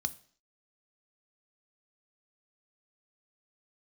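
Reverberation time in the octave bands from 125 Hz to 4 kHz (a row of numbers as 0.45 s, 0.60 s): 0.45 s, 0.55 s, 0.55 s, 0.50 s, 0.50 s, 0.60 s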